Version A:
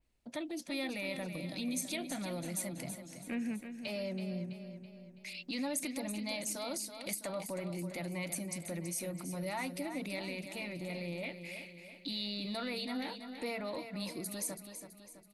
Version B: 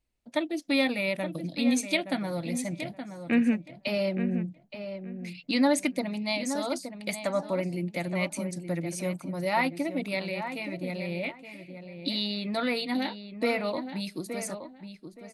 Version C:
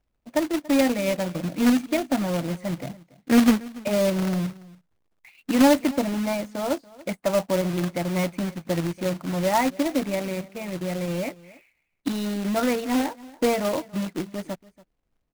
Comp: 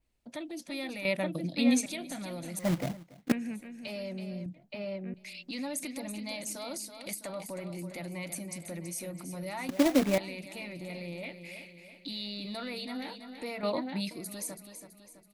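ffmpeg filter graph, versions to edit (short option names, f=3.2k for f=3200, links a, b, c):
-filter_complex "[1:a]asplit=3[a][b][c];[2:a]asplit=2[d][e];[0:a]asplit=6[f][g][h][i][j][k];[f]atrim=end=1.052[l];[a]atrim=start=1.048:end=1.862[m];[g]atrim=start=1.858:end=2.592[n];[d]atrim=start=2.588:end=3.322[o];[h]atrim=start=3.318:end=4.462[p];[b]atrim=start=4.458:end=5.142[q];[i]atrim=start=5.138:end=9.692[r];[e]atrim=start=9.688:end=10.182[s];[j]atrim=start=10.178:end=13.632[t];[c]atrim=start=13.628:end=14.112[u];[k]atrim=start=14.108[v];[l][m]acrossfade=d=0.004:c1=hsin:c2=hsin[w];[w][n]acrossfade=d=0.004:c1=hsin:c2=hsin[x];[x][o]acrossfade=d=0.004:c1=hsin:c2=hsin[y];[y][p]acrossfade=d=0.004:c1=hsin:c2=hsin[z];[z][q]acrossfade=d=0.004:c1=hsin:c2=hsin[aa];[aa][r]acrossfade=d=0.004:c1=hsin:c2=hsin[ab];[ab][s]acrossfade=d=0.004:c1=hsin:c2=hsin[ac];[ac][t]acrossfade=d=0.004:c1=hsin:c2=hsin[ad];[ad][u]acrossfade=d=0.004:c1=hsin:c2=hsin[ae];[ae][v]acrossfade=d=0.004:c1=hsin:c2=hsin"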